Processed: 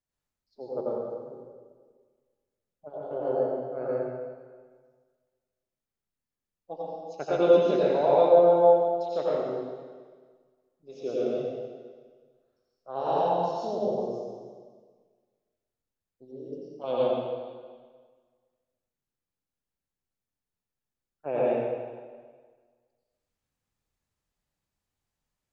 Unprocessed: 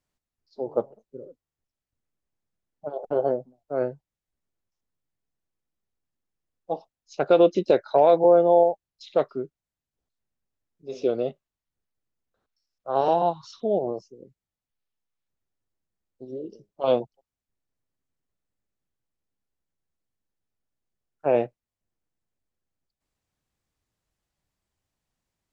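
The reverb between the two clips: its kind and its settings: plate-style reverb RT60 1.6 s, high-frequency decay 0.95×, pre-delay 75 ms, DRR -8 dB; trim -11 dB

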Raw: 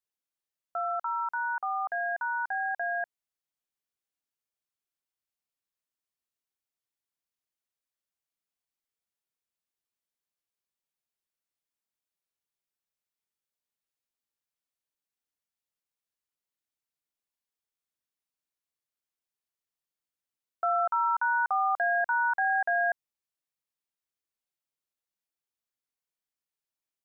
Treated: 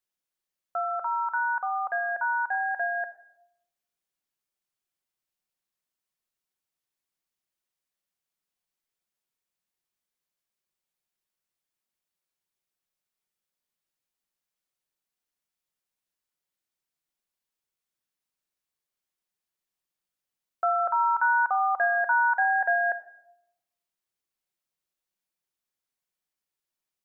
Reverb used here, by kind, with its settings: simulated room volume 2700 m³, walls furnished, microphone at 1 m; trim +2.5 dB

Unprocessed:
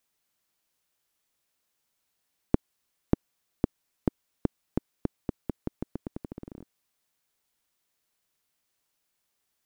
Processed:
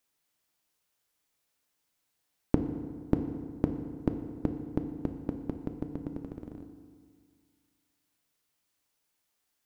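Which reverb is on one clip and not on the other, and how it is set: FDN reverb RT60 1.9 s, low-frequency decay 1.1×, high-frequency decay 0.65×, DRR 5.5 dB; trim -1.5 dB

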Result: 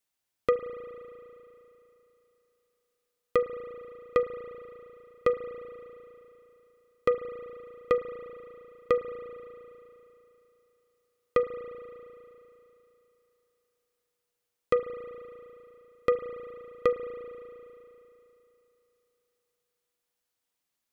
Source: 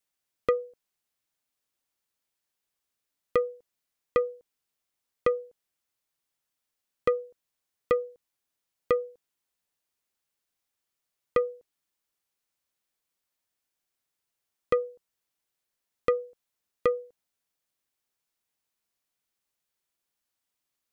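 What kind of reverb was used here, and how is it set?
spring tank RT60 3.2 s, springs 35 ms, chirp 25 ms, DRR 8.5 dB

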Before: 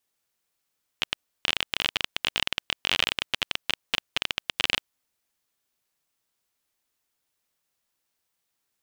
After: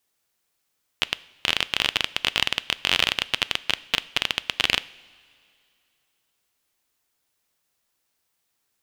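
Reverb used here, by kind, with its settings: two-slope reverb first 0.59 s, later 2.6 s, from -13 dB, DRR 16.5 dB; trim +4 dB

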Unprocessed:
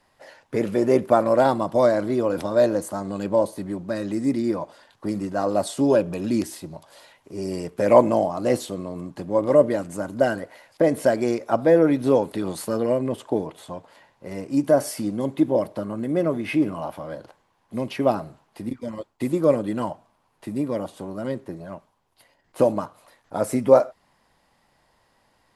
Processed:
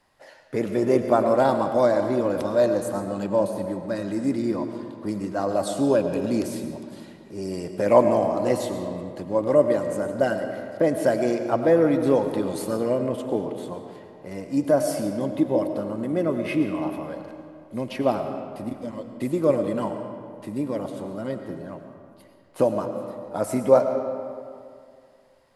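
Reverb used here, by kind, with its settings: algorithmic reverb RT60 2.3 s, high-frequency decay 0.6×, pre-delay 65 ms, DRR 6.5 dB; trim -2 dB

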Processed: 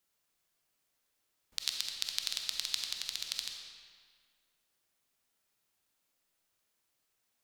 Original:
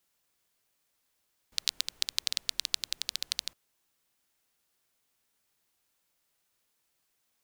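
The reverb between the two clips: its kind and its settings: algorithmic reverb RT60 1.9 s, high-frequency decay 0.8×, pre-delay 5 ms, DRR 2 dB; trim -4.5 dB

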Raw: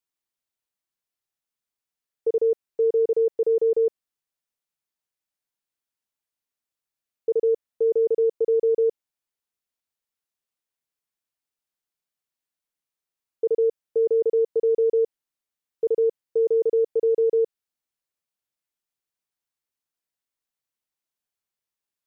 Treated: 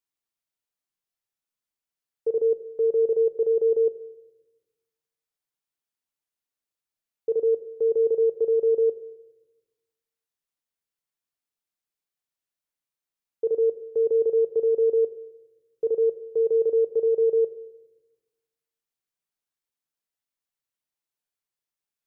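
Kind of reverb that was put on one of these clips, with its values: simulated room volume 470 m³, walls mixed, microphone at 0.34 m; trim -2.5 dB

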